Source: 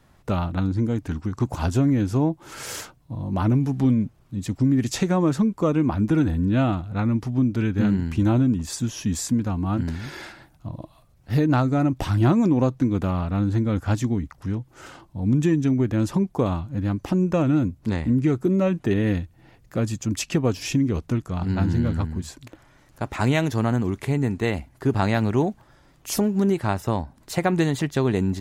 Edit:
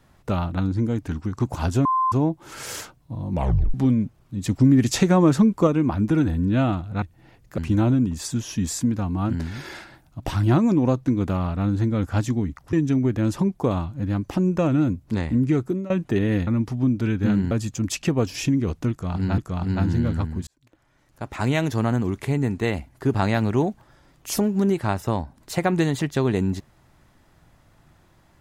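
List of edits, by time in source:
0:01.85–0:02.12: beep over 1,040 Hz −17.5 dBFS
0:03.32: tape stop 0.42 s
0:04.44–0:05.67: clip gain +4 dB
0:07.02–0:08.06: swap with 0:19.22–0:19.78
0:10.68–0:11.94: remove
0:14.47–0:15.48: remove
0:18.36–0:18.65: fade out, to −19.5 dB
0:21.18–0:21.65: repeat, 2 plays
0:22.27–0:23.50: fade in

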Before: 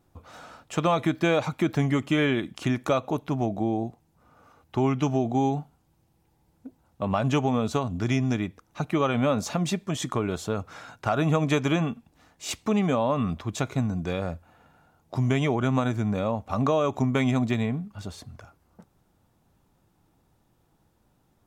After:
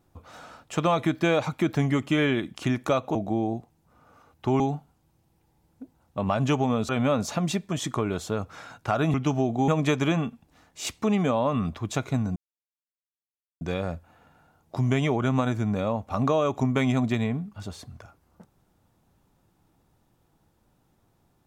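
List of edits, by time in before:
0:03.15–0:03.45: remove
0:04.90–0:05.44: move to 0:11.32
0:07.73–0:09.07: remove
0:14.00: splice in silence 1.25 s

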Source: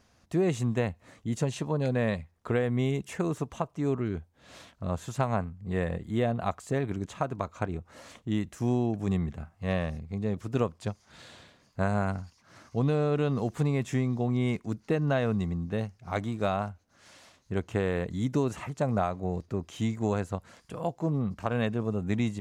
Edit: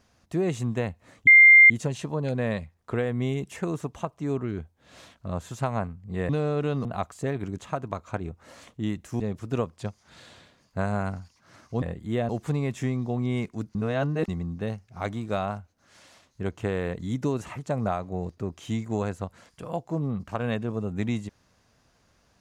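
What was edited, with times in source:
0:01.27: insert tone 2,100 Hz −9 dBFS 0.43 s
0:05.86–0:06.33: swap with 0:12.84–0:13.40
0:08.68–0:10.22: remove
0:14.86–0:15.39: reverse

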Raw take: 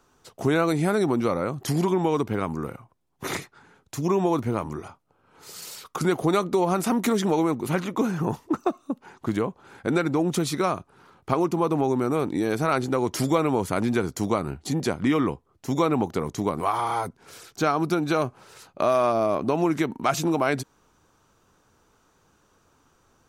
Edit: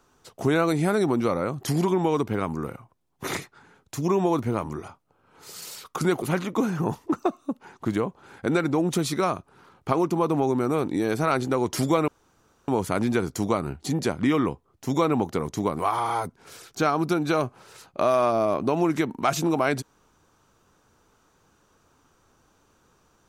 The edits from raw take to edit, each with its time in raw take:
0:06.22–0:07.63: remove
0:13.49: splice in room tone 0.60 s

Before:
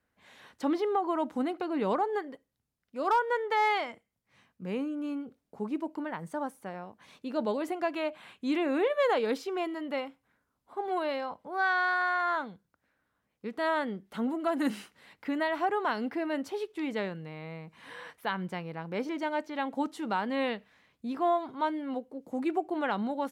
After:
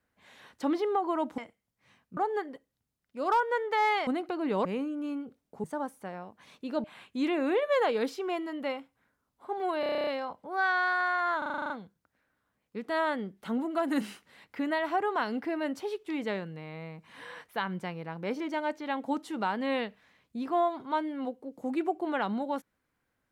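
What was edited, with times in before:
0:01.38–0:01.96: swap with 0:03.86–0:04.65
0:05.64–0:06.25: remove
0:07.45–0:08.12: remove
0:11.08: stutter 0.03 s, 10 plays
0:12.39: stutter 0.04 s, 9 plays

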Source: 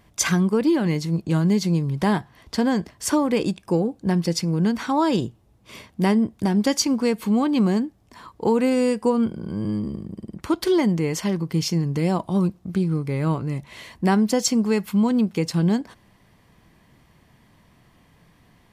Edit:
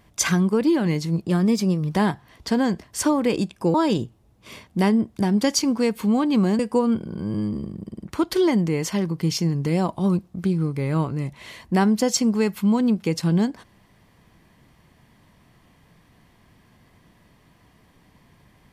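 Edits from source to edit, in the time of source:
0:01.26–0:02.01: play speed 110%
0:03.81–0:04.97: remove
0:07.82–0:08.90: remove

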